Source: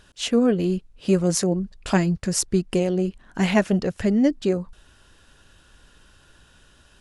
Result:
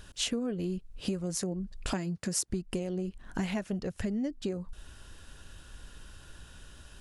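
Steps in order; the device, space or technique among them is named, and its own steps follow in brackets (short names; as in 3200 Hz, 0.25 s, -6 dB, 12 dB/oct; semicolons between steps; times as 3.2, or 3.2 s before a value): 1.93–2.5 HPF 170 Hz 12 dB/oct; ASMR close-microphone chain (low shelf 130 Hz +7.5 dB; compressor 10:1, threshold -30 dBFS, peak gain reduction 18.5 dB; high shelf 8300 Hz +7 dB)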